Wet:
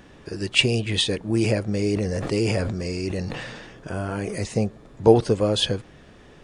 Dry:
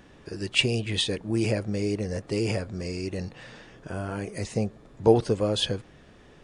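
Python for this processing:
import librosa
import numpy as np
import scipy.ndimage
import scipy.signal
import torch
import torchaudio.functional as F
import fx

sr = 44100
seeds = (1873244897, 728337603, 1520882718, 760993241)

y = fx.sustainer(x, sr, db_per_s=34.0, at=(1.79, 4.4))
y = y * 10.0 ** (4.0 / 20.0)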